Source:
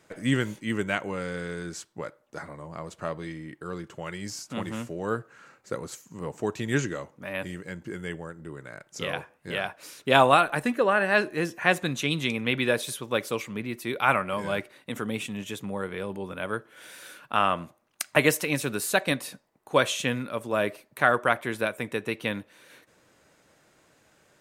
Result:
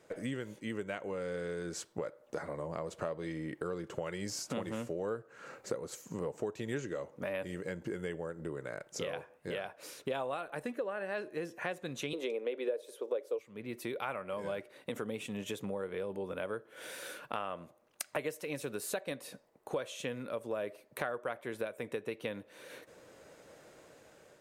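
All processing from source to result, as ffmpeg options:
-filter_complex "[0:a]asettb=1/sr,asplit=3[a][b][c];[a]atrim=end=12.134[d];[b]atrim=start=12.13:end=13.39,asetpts=PTS-STARTPTS,afade=t=in:d=0.004:c=qsin,afade=t=out:st=1.256:d=0.004:c=qsin,highpass=f=290:w=0.5412,highpass=f=290:w=1.3066,equalizer=f=470:t=o:w=1.4:g=14[e];[c]atrim=start=13.386[f];[d][e]acrossfade=d=0.004:c1=hsin:c2=qsin[g];[g][f]acrossfade=d=0.004:c1=qsin:c2=hsin,dynaudnorm=f=640:g=5:m=11dB,equalizer=f=500:w=1.5:g=9,acompressor=threshold=-31dB:ratio=5,volume=-5dB"

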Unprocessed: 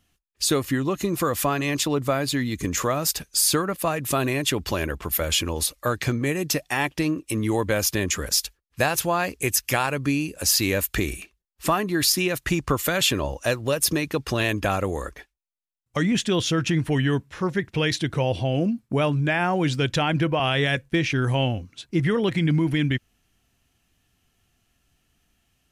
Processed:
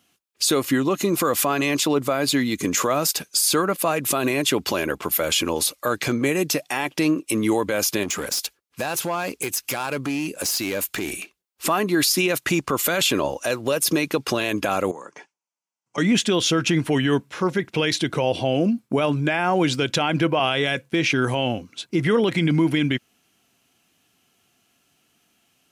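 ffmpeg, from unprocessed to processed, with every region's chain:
-filter_complex "[0:a]asettb=1/sr,asplit=3[a][b][c];[a]atrim=end=8.034[d];[b]atrim=start=8.03:end=11.11,asetpts=PTS-STARTPTS,afade=t=in:d=0.004:c=qsin,afade=t=out:st=3.076:d=0.004:c=qsin,acompressor=threshold=-24dB:ratio=12:attack=3.2:release=140:knee=1:detection=peak,asoftclip=type=hard:threshold=-25.5dB[e];[c]atrim=start=11.106[f];[d][e]acrossfade=d=0.004:c1=hsin:c2=qsin[g];[g][f]acrossfade=d=0.004:c1=qsin:c2=hsin,asettb=1/sr,asplit=3[h][i][j];[h]atrim=end=14.914[k];[i]atrim=start=14.91:end=15.98,asetpts=PTS-STARTPTS,afade=t=in:d=0.004:c=qsin,afade=t=out:st=1.066:d=0.004:c=qsin,acompressor=threshold=-42dB:ratio=4:attack=3.2:release=140:knee=1:detection=peak,highpass=f=120:w=0.5412,highpass=f=120:w=1.3066,equalizer=f=170:t=q:w=4:g=4,equalizer=f=930:t=q:w=4:g=9,equalizer=f=3.8k:t=q:w=4:g=-9,equalizer=f=6.1k:t=q:w=4:g=5,lowpass=f=8.2k:w=0.5412,lowpass=f=8.2k:w=1.3066[l];[j]atrim=start=15.976[m];[k][l]acrossfade=d=0.004:c1=hsin:c2=qsin[n];[n][m]acrossfade=d=0.004:c1=qsin:c2=hsin,highpass=210,bandreject=f=1.8k:w=12,alimiter=limit=-16.5dB:level=0:latency=1:release=36,volume=6dB"

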